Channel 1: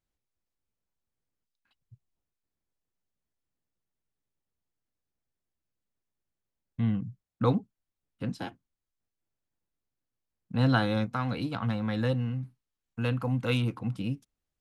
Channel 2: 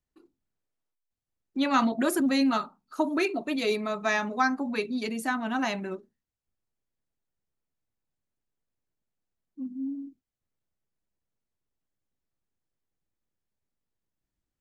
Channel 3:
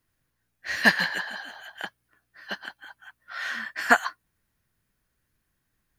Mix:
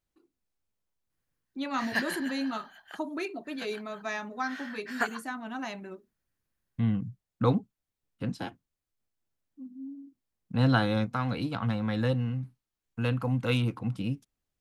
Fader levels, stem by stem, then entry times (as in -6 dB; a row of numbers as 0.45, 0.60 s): +0.5, -8.0, -11.0 dB; 0.00, 0.00, 1.10 s